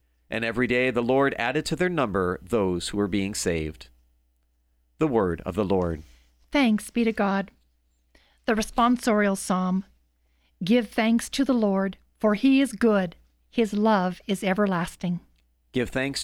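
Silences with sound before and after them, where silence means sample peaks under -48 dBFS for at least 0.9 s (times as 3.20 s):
3.89–5.00 s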